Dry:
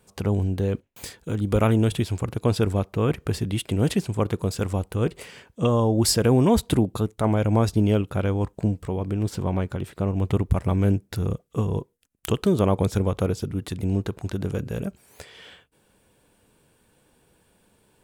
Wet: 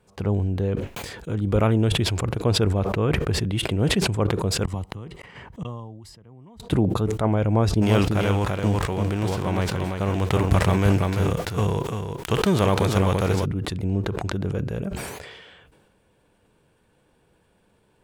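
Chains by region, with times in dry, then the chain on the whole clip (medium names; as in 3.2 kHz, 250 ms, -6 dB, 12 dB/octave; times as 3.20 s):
4.64–6.60 s: inverted gate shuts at -20 dBFS, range -40 dB + comb 1 ms, depth 40% + three bands compressed up and down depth 70%
7.81–13.44 s: formants flattened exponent 0.6 + delay 340 ms -6 dB
whole clip: low-pass 2.9 kHz 6 dB/octave; peaking EQ 250 Hz -3 dB 0.38 oct; decay stretcher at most 35 dB/s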